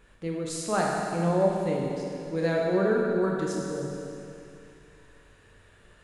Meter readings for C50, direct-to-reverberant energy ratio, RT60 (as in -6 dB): 0.0 dB, -2.5 dB, 2.7 s